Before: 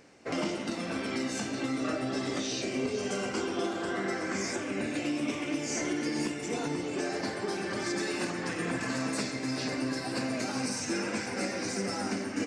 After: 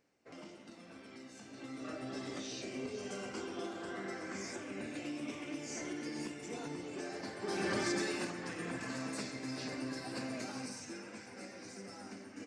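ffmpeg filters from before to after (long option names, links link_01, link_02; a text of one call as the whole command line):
ffmpeg -i in.wav -af "afade=type=in:start_time=1.4:duration=0.7:silence=0.334965,afade=type=in:start_time=7.39:duration=0.28:silence=0.316228,afade=type=out:start_time=7.67:duration=0.69:silence=0.375837,afade=type=out:start_time=10.37:duration=0.65:silence=0.421697" out.wav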